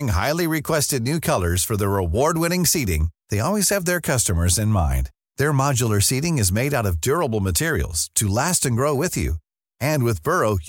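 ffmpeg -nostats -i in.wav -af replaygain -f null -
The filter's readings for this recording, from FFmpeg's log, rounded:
track_gain = +4.4 dB
track_peak = 0.428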